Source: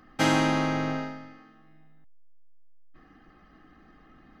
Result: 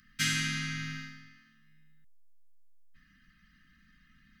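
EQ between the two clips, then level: elliptic band-stop 210–1600 Hz, stop band 80 dB; treble shelf 2.4 kHz +10 dB; -5.5 dB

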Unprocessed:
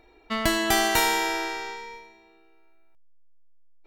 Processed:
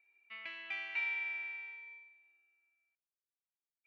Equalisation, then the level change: band-pass filter 2.4 kHz, Q 13; distance through air 230 m; 0.0 dB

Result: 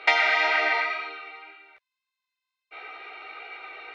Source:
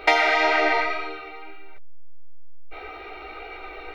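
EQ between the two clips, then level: band-pass filter 2.4 kHz, Q 0.6; 0.0 dB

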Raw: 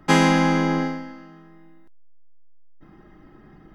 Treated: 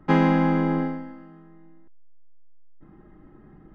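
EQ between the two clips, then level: tape spacing loss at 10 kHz 39 dB; band-stop 690 Hz, Q 12; 0.0 dB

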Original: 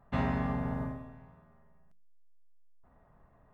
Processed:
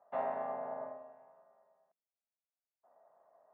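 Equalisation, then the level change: ladder band-pass 720 Hz, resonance 60%; +7.5 dB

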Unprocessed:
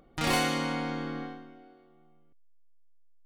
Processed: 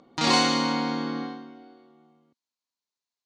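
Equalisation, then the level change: cabinet simulation 120–6900 Hz, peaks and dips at 240 Hz +6 dB, 980 Hz +10 dB, 4.2 kHz +8 dB, 6.5 kHz +3 dB; peaking EQ 350 Hz +3.5 dB 1.9 oct; treble shelf 3.6 kHz +8.5 dB; 0.0 dB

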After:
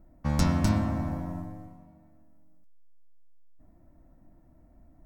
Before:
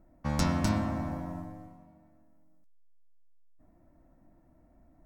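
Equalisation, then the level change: bass shelf 190 Hz +6.5 dB; treble shelf 12 kHz +4.5 dB; 0.0 dB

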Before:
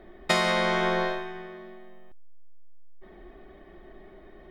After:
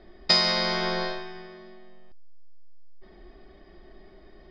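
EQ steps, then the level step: resonant low-pass 4.9 kHz, resonance Q 15; bass shelf 170 Hz +5 dB; -4.0 dB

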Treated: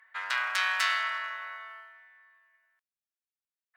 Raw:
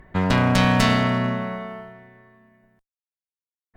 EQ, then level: ladder high-pass 1.2 kHz, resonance 40%; +1.5 dB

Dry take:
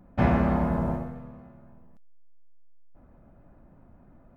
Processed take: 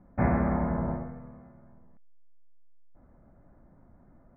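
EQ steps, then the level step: steep low-pass 2.3 kHz 96 dB/octave; -3.0 dB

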